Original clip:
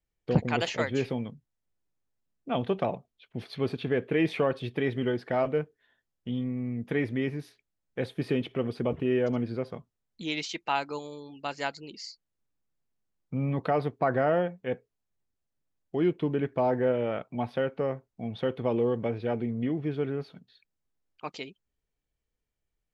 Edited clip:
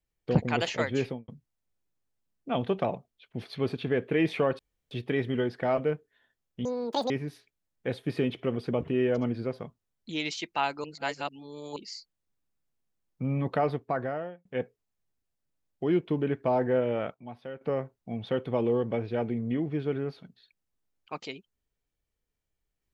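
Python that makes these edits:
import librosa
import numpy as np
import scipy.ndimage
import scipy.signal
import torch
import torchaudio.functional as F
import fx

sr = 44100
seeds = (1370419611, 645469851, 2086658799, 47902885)

y = fx.studio_fade_out(x, sr, start_s=1.03, length_s=0.25)
y = fx.edit(y, sr, fx.insert_room_tone(at_s=4.59, length_s=0.32),
    fx.speed_span(start_s=6.33, length_s=0.89, speed=1.97),
    fx.reverse_span(start_s=10.96, length_s=0.92),
    fx.fade_out_span(start_s=13.76, length_s=0.81),
    fx.clip_gain(start_s=17.26, length_s=0.47, db=-11.5), tone=tone)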